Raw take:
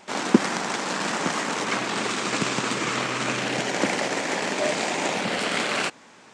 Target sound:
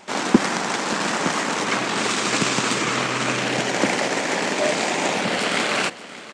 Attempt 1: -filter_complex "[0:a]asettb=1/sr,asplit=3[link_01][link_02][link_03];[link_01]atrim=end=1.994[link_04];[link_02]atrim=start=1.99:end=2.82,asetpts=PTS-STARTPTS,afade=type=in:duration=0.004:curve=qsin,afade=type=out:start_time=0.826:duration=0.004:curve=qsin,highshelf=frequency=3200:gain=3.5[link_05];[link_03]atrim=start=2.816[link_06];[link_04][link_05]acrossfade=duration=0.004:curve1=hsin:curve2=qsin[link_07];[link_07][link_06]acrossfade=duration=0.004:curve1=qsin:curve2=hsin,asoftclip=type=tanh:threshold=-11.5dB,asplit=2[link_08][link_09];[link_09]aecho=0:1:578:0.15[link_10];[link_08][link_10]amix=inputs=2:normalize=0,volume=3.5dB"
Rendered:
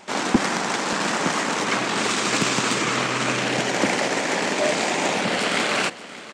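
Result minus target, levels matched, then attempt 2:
soft clipping: distortion +9 dB
-filter_complex "[0:a]asettb=1/sr,asplit=3[link_01][link_02][link_03];[link_01]atrim=end=1.994[link_04];[link_02]atrim=start=1.99:end=2.82,asetpts=PTS-STARTPTS,afade=type=in:duration=0.004:curve=qsin,afade=type=out:start_time=0.826:duration=0.004:curve=qsin,highshelf=frequency=3200:gain=3.5[link_05];[link_03]atrim=start=2.816[link_06];[link_04][link_05]acrossfade=duration=0.004:curve1=hsin:curve2=qsin[link_07];[link_07][link_06]acrossfade=duration=0.004:curve1=qsin:curve2=hsin,asoftclip=type=tanh:threshold=-3.5dB,asplit=2[link_08][link_09];[link_09]aecho=0:1:578:0.15[link_10];[link_08][link_10]amix=inputs=2:normalize=0,volume=3.5dB"

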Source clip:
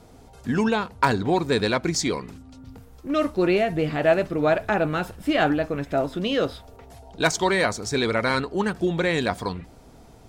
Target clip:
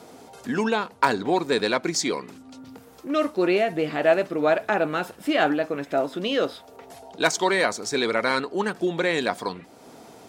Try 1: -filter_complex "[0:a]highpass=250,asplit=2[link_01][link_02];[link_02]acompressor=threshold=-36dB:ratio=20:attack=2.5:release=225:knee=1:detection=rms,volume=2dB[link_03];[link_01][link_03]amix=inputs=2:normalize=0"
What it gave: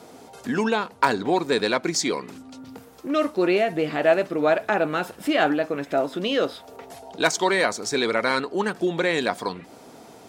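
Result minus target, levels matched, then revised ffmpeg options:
downward compressor: peak gain reduction −10.5 dB
-filter_complex "[0:a]highpass=250,asplit=2[link_01][link_02];[link_02]acompressor=threshold=-47dB:ratio=20:attack=2.5:release=225:knee=1:detection=rms,volume=2dB[link_03];[link_01][link_03]amix=inputs=2:normalize=0"

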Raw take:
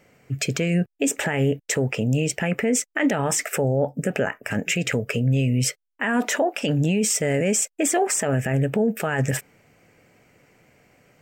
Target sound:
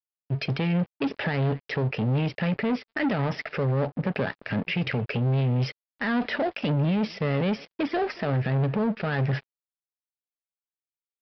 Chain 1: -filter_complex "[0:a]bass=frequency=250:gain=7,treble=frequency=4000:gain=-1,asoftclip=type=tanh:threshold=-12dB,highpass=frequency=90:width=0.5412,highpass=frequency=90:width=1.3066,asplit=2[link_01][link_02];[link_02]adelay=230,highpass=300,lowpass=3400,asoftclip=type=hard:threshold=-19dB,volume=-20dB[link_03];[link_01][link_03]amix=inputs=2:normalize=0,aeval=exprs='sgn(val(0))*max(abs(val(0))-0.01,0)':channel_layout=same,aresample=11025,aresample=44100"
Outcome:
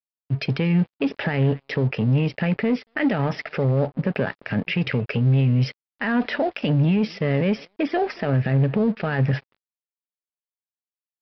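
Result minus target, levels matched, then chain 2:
soft clipping: distortion −8 dB
-filter_complex "[0:a]bass=frequency=250:gain=7,treble=frequency=4000:gain=-1,asoftclip=type=tanh:threshold=-20dB,highpass=frequency=90:width=0.5412,highpass=frequency=90:width=1.3066,asplit=2[link_01][link_02];[link_02]adelay=230,highpass=300,lowpass=3400,asoftclip=type=hard:threshold=-19dB,volume=-20dB[link_03];[link_01][link_03]amix=inputs=2:normalize=0,aeval=exprs='sgn(val(0))*max(abs(val(0))-0.01,0)':channel_layout=same,aresample=11025,aresample=44100"

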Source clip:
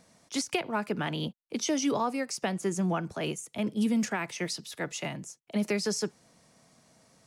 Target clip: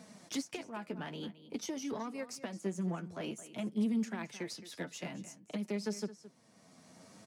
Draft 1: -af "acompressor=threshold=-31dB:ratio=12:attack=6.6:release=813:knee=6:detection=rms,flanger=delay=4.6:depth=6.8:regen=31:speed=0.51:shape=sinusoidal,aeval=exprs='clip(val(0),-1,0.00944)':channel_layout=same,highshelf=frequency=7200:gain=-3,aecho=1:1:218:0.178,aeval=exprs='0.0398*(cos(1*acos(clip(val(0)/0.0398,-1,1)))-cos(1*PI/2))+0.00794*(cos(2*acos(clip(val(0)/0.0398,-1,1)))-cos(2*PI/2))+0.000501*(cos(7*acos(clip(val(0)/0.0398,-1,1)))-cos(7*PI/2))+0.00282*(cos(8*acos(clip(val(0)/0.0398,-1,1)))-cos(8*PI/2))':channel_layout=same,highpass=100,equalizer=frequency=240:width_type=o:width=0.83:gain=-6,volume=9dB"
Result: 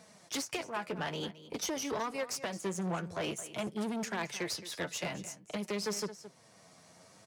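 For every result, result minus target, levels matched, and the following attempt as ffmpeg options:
downward compressor: peak gain reduction −8 dB; 250 Hz band −5.0 dB
-af "acompressor=threshold=-40dB:ratio=12:attack=6.6:release=813:knee=6:detection=rms,flanger=delay=4.6:depth=6.8:regen=31:speed=0.51:shape=sinusoidal,aeval=exprs='clip(val(0),-1,0.00944)':channel_layout=same,highshelf=frequency=7200:gain=-3,aecho=1:1:218:0.178,aeval=exprs='0.0398*(cos(1*acos(clip(val(0)/0.0398,-1,1)))-cos(1*PI/2))+0.00794*(cos(2*acos(clip(val(0)/0.0398,-1,1)))-cos(2*PI/2))+0.000501*(cos(7*acos(clip(val(0)/0.0398,-1,1)))-cos(7*PI/2))+0.00282*(cos(8*acos(clip(val(0)/0.0398,-1,1)))-cos(8*PI/2))':channel_layout=same,highpass=100,equalizer=frequency=240:width_type=o:width=0.83:gain=-6,volume=9dB"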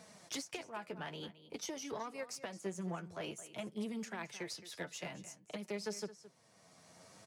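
250 Hz band −4.0 dB
-af "acompressor=threshold=-40dB:ratio=12:attack=6.6:release=813:knee=6:detection=rms,flanger=delay=4.6:depth=6.8:regen=31:speed=0.51:shape=sinusoidal,aeval=exprs='clip(val(0),-1,0.00944)':channel_layout=same,highshelf=frequency=7200:gain=-3,aecho=1:1:218:0.178,aeval=exprs='0.0398*(cos(1*acos(clip(val(0)/0.0398,-1,1)))-cos(1*PI/2))+0.00794*(cos(2*acos(clip(val(0)/0.0398,-1,1)))-cos(2*PI/2))+0.000501*(cos(7*acos(clip(val(0)/0.0398,-1,1)))-cos(7*PI/2))+0.00282*(cos(8*acos(clip(val(0)/0.0398,-1,1)))-cos(8*PI/2))':channel_layout=same,highpass=100,equalizer=frequency=240:width_type=o:width=0.83:gain=5,volume=9dB"

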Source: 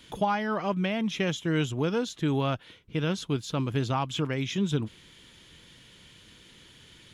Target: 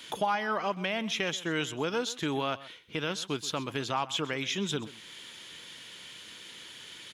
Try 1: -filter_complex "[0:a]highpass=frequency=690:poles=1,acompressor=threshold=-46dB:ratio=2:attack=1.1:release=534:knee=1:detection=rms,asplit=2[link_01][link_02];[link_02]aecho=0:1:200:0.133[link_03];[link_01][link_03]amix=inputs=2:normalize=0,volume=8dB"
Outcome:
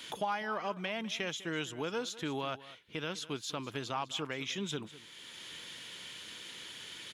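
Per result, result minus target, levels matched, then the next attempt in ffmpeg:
echo 71 ms late; downward compressor: peak gain reduction +5.5 dB
-filter_complex "[0:a]highpass=frequency=690:poles=1,acompressor=threshold=-46dB:ratio=2:attack=1.1:release=534:knee=1:detection=rms,asplit=2[link_01][link_02];[link_02]aecho=0:1:129:0.133[link_03];[link_01][link_03]amix=inputs=2:normalize=0,volume=8dB"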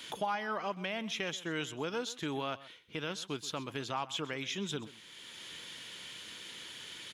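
downward compressor: peak gain reduction +5.5 dB
-filter_complex "[0:a]highpass=frequency=690:poles=1,acompressor=threshold=-35dB:ratio=2:attack=1.1:release=534:knee=1:detection=rms,asplit=2[link_01][link_02];[link_02]aecho=0:1:129:0.133[link_03];[link_01][link_03]amix=inputs=2:normalize=0,volume=8dB"

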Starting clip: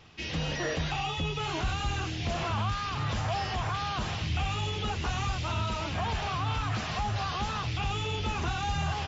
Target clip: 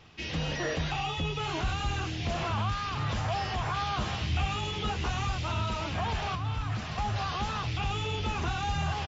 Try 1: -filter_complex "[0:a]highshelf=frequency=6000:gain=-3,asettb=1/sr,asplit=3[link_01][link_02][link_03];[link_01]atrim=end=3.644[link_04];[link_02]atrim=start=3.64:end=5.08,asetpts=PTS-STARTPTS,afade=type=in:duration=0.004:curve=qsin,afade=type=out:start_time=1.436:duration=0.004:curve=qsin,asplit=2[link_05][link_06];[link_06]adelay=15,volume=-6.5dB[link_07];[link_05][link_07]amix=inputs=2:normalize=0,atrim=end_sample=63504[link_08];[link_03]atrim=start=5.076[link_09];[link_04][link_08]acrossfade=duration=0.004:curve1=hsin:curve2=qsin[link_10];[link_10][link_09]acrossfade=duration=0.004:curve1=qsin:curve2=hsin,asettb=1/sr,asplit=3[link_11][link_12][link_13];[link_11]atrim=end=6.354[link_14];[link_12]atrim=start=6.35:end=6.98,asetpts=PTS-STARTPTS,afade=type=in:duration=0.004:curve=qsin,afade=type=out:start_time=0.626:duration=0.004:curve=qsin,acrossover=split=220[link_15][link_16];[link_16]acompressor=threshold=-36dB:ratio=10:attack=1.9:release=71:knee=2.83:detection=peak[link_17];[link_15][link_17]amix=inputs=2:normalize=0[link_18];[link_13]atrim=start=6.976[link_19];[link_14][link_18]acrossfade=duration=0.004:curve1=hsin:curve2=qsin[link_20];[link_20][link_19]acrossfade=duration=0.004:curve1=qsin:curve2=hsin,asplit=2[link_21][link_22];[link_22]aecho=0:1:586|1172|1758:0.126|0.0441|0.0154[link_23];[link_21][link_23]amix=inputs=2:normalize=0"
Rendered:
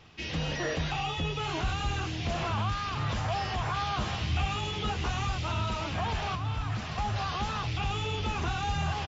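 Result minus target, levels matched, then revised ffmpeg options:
echo-to-direct +11 dB
-filter_complex "[0:a]highshelf=frequency=6000:gain=-3,asettb=1/sr,asplit=3[link_01][link_02][link_03];[link_01]atrim=end=3.644[link_04];[link_02]atrim=start=3.64:end=5.08,asetpts=PTS-STARTPTS,afade=type=in:duration=0.004:curve=qsin,afade=type=out:start_time=1.436:duration=0.004:curve=qsin,asplit=2[link_05][link_06];[link_06]adelay=15,volume=-6.5dB[link_07];[link_05][link_07]amix=inputs=2:normalize=0,atrim=end_sample=63504[link_08];[link_03]atrim=start=5.076[link_09];[link_04][link_08]acrossfade=duration=0.004:curve1=hsin:curve2=qsin[link_10];[link_10][link_09]acrossfade=duration=0.004:curve1=qsin:curve2=hsin,asettb=1/sr,asplit=3[link_11][link_12][link_13];[link_11]atrim=end=6.354[link_14];[link_12]atrim=start=6.35:end=6.98,asetpts=PTS-STARTPTS,afade=type=in:duration=0.004:curve=qsin,afade=type=out:start_time=0.626:duration=0.004:curve=qsin,acrossover=split=220[link_15][link_16];[link_16]acompressor=threshold=-36dB:ratio=10:attack=1.9:release=71:knee=2.83:detection=peak[link_17];[link_15][link_17]amix=inputs=2:normalize=0[link_18];[link_13]atrim=start=6.976[link_19];[link_14][link_18]acrossfade=duration=0.004:curve1=hsin:curve2=qsin[link_20];[link_20][link_19]acrossfade=duration=0.004:curve1=qsin:curve2=hsin,asplit=2[link_21][link_22];[link_22]aecho=0:1:586|1172:0.0355|0.0124[link_23];[link_21][link_23]amix=inputs=2:normalize=0"

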